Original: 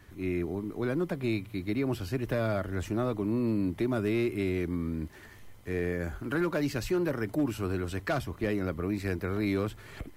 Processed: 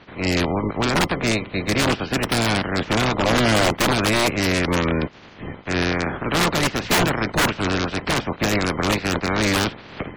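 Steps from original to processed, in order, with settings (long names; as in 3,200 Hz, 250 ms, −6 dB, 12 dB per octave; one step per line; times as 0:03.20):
ceiling on every frequency bin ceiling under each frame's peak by 28 dB
low-pass filter 3,300 Hz 12 dB per octave
parametric band 180 Hz +9 dB 2.9 octaves
wrap-around overflow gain 19 dB
gate on every frequency bin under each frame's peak −25 dB strong
level +7.5 dB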